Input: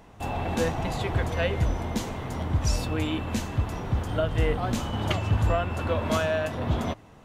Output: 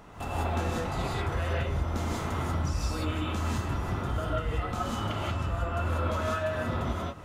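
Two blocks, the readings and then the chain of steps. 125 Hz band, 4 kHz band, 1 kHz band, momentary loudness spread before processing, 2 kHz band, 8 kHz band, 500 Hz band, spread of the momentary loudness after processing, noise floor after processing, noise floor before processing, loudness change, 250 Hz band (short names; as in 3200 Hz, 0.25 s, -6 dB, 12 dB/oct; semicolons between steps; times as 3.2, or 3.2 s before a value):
-3.0 dB, -4.0 dB, -1.0 dB, 5 LU, -3.0 dB, -5.0 dB, -5.0 dB, 2 LU, -35 dBFS, -51 dBFS, -3.5 dB, -4.0 dB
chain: bell 1300 Hz +9.5 dB 0.28 oct; compressor 12:1, threshold -33 dBFS, peak gain reduction 15 dB; non-linear reverb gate 0.21 s rising, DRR -5 dB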